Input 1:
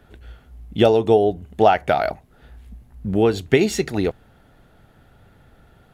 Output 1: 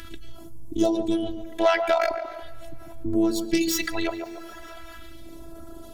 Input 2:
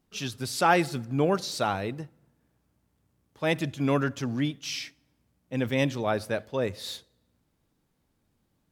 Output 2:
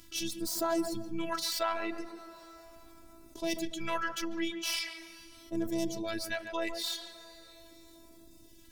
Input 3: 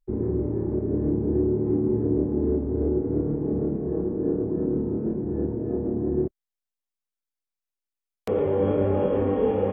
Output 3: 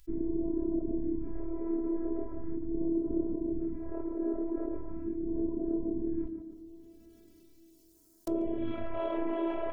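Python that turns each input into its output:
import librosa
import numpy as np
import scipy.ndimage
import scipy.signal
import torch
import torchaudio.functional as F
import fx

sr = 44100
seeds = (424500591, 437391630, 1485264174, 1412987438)

p1 = fx.tracing_dist(x, sr, depth_ms=0.11)
p2 = fx.dereverb_blind(p1, sr, rt60_s=0.9)
p3 = fx.highpass(p2, sr, hz=51.0, slope=6)
p4 = 10.0 ** (-9.0 / 20.0) * np.tanh(p3 / 10.0 ** (-9.0 / 20.0))
p5 = p3 + (p4 * librosa.db_to_amplitude(-6.0))
p6 = fx.robotise(p5, sr, hz=332.0)
p7 = fx.phaser_stages(p6, sr, stages=2, low_hz=110.0, high_hz=2300.0, hz=0.4, feedback_pct=35)
p8 = p7 + fx.echo_tape(p7, sr, ms=143, feedback_pct=30, wet_db=-12, lp_hz=1100.0, drive_db=4.0, wow_cents=23, dry=0)
p9 = fx.rev_double_slope(p8, sr, seeds[0], early_s=0.27, late_s=3.0, knee_db=-20, drr_db=19.0)
p10 = fx.env_flatten(p9, sr, amount_pct=50)
y = p10 * librosa.db_to_amplitude(-7.0)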